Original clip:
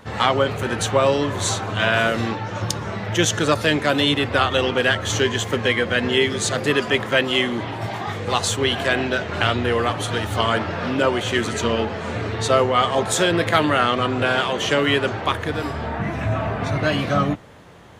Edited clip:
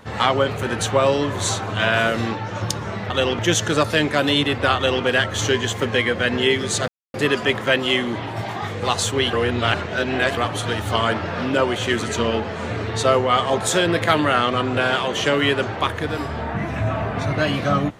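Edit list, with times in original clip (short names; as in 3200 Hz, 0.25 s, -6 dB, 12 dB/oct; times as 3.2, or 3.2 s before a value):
4.47–4.76 copy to 3.1
6.59 insert silence 0.26 s
8.78–9.82 reverse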